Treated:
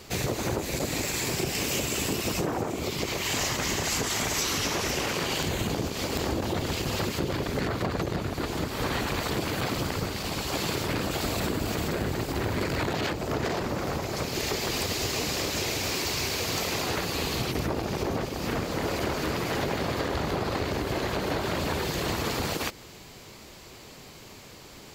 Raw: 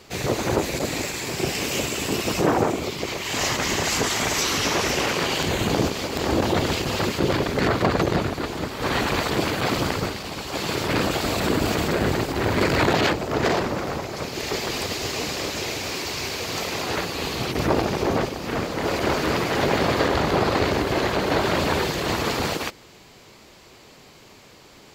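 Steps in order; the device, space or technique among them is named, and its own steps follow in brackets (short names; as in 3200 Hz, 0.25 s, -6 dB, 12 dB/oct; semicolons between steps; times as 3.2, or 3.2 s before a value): ASMR close-microphone chain (low shelf 170 Hz +5.5 dB; compressor, threshold -26 dBFS, peak gain reduction 12 dB; high shelf 7300 Hz +7 dB)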